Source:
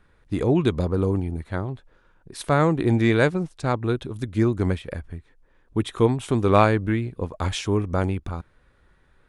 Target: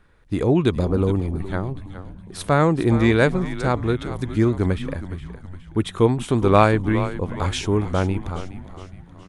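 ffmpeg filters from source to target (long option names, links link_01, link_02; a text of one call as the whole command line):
ffmpeg -i in.wav -filter_complex "[0:a]asplit=6[link_01][link_02][link_03][link_04][link_05][link_06];[link_02]adelay=415,afreqshift=-92,volume=-12dB[link_07];[link_03]adelay=830,afreqshift=-184,volume=-18.2dB[link_08];[link_04]adelay=1245,afreqshift=-276,volume=-24.4dB[link_09];[link_05]adelay=1660,afreqshift=-368,volume=-30.6dB[link_10];[link_06]adelay=2075,afreqshift=-460,volume=-36.8dB[link_11];[link_01][link_07][link_08][link_09][link_10][link_11]amix=inputs=6:normalize=0,volume=2dB" out.wav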